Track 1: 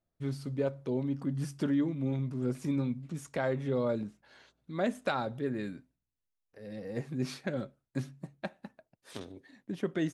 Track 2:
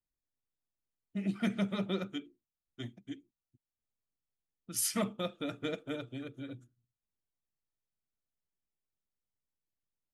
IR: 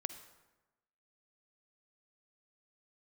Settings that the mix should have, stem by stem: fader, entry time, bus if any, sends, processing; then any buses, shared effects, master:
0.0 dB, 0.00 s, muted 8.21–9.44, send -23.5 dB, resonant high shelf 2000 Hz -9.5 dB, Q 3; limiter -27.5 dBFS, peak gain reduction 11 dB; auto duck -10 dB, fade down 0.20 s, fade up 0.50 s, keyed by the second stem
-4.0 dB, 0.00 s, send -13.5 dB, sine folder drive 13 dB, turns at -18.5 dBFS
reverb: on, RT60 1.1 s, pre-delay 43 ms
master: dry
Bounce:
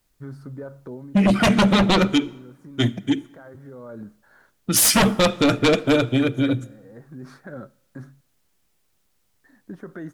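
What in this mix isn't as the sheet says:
stem 2 -4.0 dB -> +4.0 dB; reverb return +6.0 dB

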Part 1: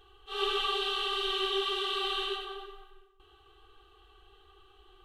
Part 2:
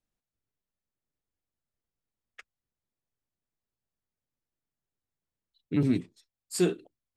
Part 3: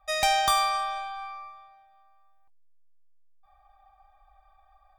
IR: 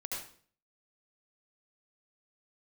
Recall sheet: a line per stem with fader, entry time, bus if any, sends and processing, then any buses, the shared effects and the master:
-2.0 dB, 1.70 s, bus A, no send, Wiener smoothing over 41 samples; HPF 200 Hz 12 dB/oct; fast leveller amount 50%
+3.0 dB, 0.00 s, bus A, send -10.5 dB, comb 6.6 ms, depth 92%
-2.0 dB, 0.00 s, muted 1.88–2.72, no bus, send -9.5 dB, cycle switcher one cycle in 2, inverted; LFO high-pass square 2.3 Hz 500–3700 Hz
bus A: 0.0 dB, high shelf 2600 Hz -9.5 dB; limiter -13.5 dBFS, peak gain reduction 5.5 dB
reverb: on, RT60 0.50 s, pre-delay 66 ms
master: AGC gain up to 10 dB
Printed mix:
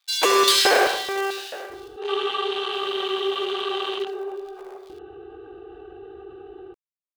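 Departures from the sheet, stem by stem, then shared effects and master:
stem 2: muted; stem 3: send -9.5 dB -> -2 dB

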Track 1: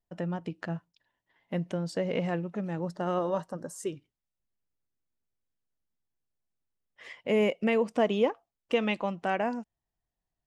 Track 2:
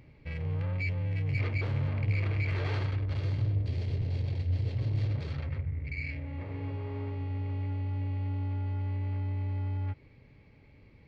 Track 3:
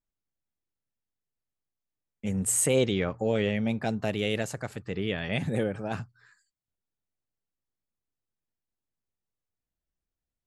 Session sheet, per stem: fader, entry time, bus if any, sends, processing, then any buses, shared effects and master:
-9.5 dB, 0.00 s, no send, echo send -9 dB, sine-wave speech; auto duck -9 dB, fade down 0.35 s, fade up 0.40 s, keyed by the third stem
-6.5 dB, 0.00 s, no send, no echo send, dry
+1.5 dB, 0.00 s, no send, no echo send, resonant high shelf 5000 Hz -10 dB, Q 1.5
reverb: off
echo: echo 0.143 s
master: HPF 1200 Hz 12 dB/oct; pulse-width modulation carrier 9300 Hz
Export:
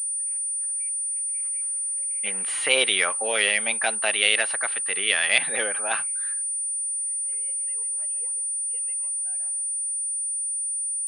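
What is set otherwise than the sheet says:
stem 1 -9.5 dB -> -20.0 dB; stem 2 -6.5 dB -> -16.0 dB; stem 3 +1.5 dB -> +13.5 dB

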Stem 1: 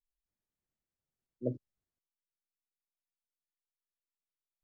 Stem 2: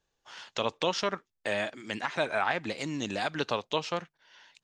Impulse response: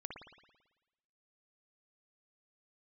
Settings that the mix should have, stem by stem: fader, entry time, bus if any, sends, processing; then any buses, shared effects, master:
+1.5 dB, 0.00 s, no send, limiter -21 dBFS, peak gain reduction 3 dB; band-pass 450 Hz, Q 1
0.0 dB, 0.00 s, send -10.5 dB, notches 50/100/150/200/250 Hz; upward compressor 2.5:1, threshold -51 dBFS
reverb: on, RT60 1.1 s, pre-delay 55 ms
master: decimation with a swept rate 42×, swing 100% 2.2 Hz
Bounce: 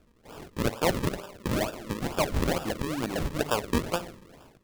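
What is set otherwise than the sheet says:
stem 1 +1.5 dB -> -8.5 dB; stem 2: send -10.5 dB -> -3 dB

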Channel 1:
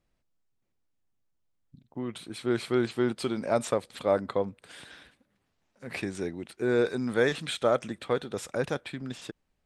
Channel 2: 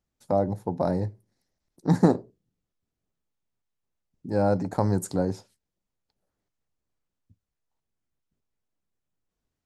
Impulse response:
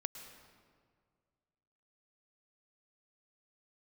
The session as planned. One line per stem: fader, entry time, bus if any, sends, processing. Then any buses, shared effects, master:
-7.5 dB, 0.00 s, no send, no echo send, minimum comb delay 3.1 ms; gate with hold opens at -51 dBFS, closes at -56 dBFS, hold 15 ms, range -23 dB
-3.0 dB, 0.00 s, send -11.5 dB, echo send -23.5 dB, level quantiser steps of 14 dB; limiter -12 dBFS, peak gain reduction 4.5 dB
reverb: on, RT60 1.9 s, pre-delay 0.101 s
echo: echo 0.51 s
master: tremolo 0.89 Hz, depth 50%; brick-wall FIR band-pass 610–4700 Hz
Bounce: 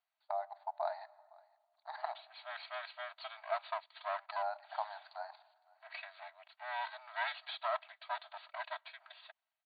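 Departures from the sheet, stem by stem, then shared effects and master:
stem 1: missing gate with hold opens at -51 dBFS, closes at -56 dBFS, hold 15 ms, range -23 dB; master: missing tremolo 0.89 Hz, depth 50%

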